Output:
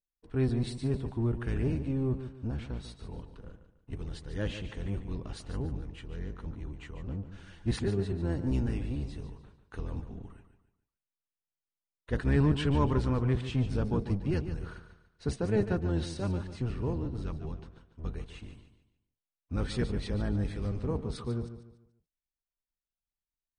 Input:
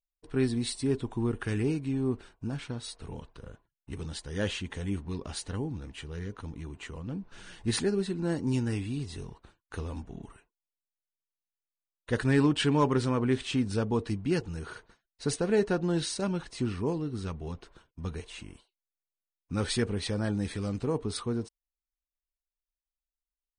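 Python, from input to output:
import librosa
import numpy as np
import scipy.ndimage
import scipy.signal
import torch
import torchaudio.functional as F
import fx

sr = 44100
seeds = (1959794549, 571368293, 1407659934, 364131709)

p1 = fx.octave_divider(x, sr, octaves=1, level_db=3.0)
p2 = fx.lowpass(p1, sr, hz=3100.0, slope=6)
p3 = p2 + fx.echo_feedback(p2, sr, ms=145, feedback_pct=35, wet_db=-11.0, dry=0)
y = p3 * librosa.db_to_amplitude(-4.5)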